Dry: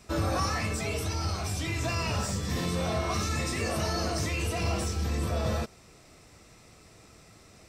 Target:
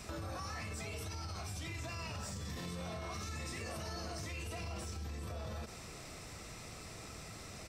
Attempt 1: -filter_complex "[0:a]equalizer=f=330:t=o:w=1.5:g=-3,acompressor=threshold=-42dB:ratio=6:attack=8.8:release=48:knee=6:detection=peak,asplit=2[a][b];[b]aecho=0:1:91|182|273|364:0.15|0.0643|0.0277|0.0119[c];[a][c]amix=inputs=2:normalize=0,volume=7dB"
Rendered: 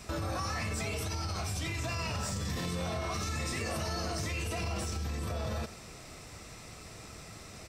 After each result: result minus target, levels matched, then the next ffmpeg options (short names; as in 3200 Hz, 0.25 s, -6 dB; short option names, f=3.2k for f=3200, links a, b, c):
echo 39 ms late; compressor: peak gain reduction -8 dB
-filter_complex "[0:a]equalizer=f=330:t=o:w=1.5:g=-3,acompressor=threshold=-42dB:ratio=6:attack=8.8:release=48:knee=6:detection=peak,asplit=2[a][b];[b]aecho=0:1:52|104|156|208:0.15|0.0643|0.0277|0.0119[c];[a][c]amix=inputs=2:normalize=0,volume=7dB"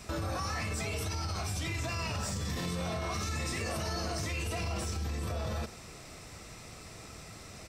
compressor: peak gain reduction -8 dB
-filter_complex "[0:a]equalizer=f=330:t=o:w=1.5:g=-3,acompressor=threshold=-51.5dB:ratio=6:attack=8.8:release=48:knee=6:detection=peak,asplit=2[a][b];[b]aecho=0:1:52|104|156|208:0.15|0.0643|0.0277|0.0119[c];[a][c]amix=inputs=2:normalize=0,volume=7dB"